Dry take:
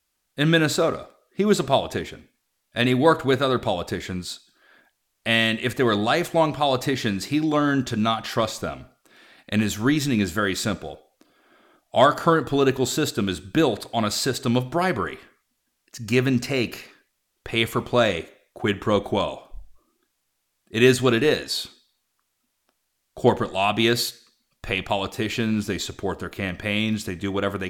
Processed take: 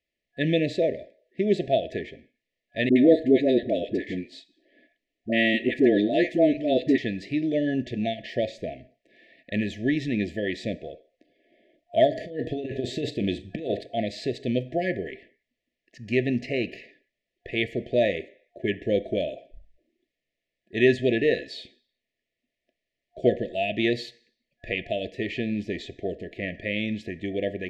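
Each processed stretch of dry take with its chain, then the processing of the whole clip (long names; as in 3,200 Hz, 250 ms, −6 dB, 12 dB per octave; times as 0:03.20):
0:02.89–0:06.98: parametric band 120 Hz −5.5 dB 1.2 octaves + hollow resonant body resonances 280/1,100 Hz, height 11 dB, ringing for 25 ms + all-pass dispersion highs, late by 69 ms, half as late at 620 Hz
0:12.12–0:13.83: compressor whose output falls as the input rises −23 dBFS, ratio −0.5 + double-tracking delay 40 ms −14 dB
whole clip: low-pass filter 2,200 Hz 12 dB per octave; brick-wall band-stop 700–1,700 Hz; low-shelf EQ 240 Hz −9 dB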